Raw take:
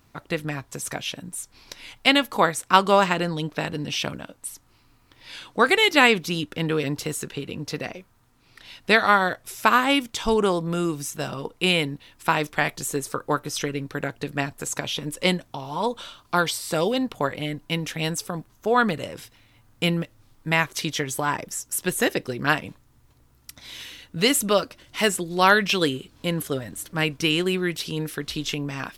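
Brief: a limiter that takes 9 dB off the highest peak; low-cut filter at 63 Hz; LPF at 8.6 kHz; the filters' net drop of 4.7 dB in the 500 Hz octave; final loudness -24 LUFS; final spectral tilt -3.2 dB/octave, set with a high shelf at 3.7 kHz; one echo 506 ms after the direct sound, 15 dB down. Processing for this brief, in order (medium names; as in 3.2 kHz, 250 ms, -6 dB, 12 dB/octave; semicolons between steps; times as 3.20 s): high-pass 63 Hz; low-pass 8.6 kHz; peaking EQ 500 Hz -6 dB; treble shelf 3.7 kHz +4 dB; peak limiter -11 dBFS; delay 506 ms -15 dB; trim +2.5 dB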